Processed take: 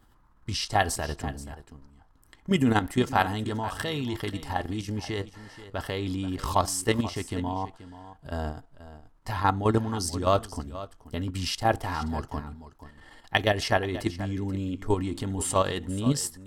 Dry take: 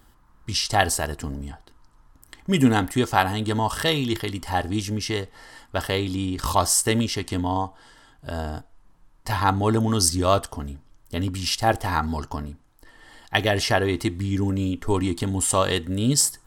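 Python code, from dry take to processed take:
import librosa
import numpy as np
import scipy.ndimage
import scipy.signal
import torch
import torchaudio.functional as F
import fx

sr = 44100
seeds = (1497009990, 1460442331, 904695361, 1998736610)

y = fx.high_shelf(x, sr, hz=3900.0, db=-6.0)
y = fx.level_steps(y, sr, step_db=10)
y = y + 10.0 ** (-15.0 / 20.0) * np.pad(y, (int(481 * sr / 1000.0), 0))[:len(y)]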